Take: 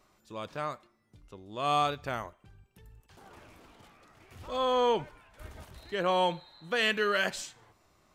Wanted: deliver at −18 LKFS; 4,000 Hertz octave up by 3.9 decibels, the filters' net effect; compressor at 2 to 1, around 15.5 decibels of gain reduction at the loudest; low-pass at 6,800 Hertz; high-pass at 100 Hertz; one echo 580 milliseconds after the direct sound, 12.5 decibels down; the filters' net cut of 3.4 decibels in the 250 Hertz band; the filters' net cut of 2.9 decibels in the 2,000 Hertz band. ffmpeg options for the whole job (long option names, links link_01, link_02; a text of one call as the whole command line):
ffmpeg -i in.wav -af "highpass=100,lowpass=6800,equalizer=frequency=250:width_type=o:gain=-4.5,equalizer=frequency=2000:width_type=o:gain=-6,equalizer=frequency=4000:width_type=o:gain=8.5,acompressor=threshold=-53dB:ratio=2,aecho=1:1:580:0.237,volume=29dB" out.wav